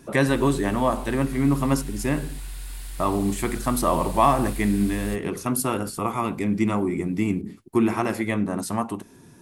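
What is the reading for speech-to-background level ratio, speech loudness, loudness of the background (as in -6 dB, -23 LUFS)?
12.5 dB, -24.5 LUFS, -37.0 LUFS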